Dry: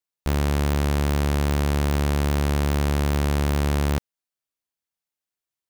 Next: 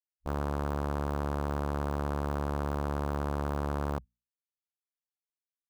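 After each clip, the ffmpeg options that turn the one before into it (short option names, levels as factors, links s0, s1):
-af "lowshelf=f=420:g=-10,bandreject=f=60:t=h:w=6,bandreject=f=120:t=h:w=6,bandreject=f=180:t=h:w=6,bandreject=f=240:t=h:w=6,afwtdn=0.0251,volume=0.794"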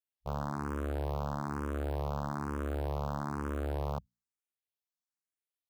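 -filter_complex "[0:a]asplit=2[s0][s1];[s1]afreqshift=1.1[s2];[s0][s2]amix=inputs=2:normalize=1"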